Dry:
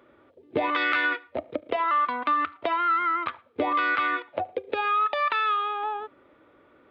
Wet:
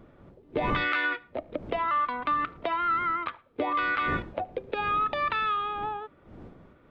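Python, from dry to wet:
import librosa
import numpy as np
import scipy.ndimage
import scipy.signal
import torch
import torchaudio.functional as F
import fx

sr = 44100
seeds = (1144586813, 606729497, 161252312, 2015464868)

y = fx.dmg_wind(x, sr, seeds[0], corner_hz=310.0, level_db=-40.0)
y = F.gain(torch.from_numpy(y), -3.0).numpy()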